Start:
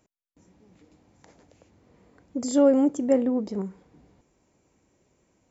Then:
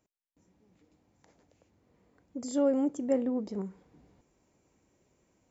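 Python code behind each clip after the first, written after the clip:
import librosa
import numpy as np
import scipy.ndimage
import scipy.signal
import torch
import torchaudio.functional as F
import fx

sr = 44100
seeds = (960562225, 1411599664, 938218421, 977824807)

y = fx.rider(x, sr, range_db=3, speed_s=2.0)
y = F.gain(torch.from_numpy(y), -6.5).numpy()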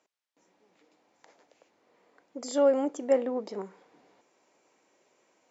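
y = fx.bandpass_edges(x, sr, low_hz=510.0, high_hz=6000.0)
y = F.gain(torch.from_numpy(y), 8.0).numpy()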